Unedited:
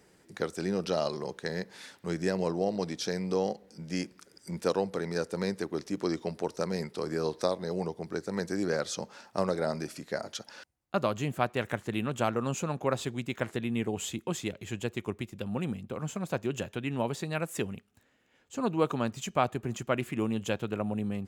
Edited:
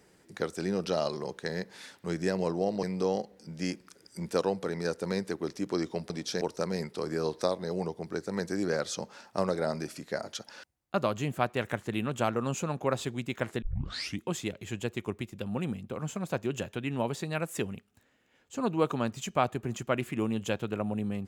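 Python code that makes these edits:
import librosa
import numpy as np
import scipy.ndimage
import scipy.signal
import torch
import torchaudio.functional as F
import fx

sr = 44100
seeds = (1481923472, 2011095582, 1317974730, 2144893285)

y = fx.edit(x, sr, fx.move(start_s=2.83, length_s=0.31, to_s=6.41),
    fx.tape_start(start_s=13.62, length_s=0.6), tone=tone)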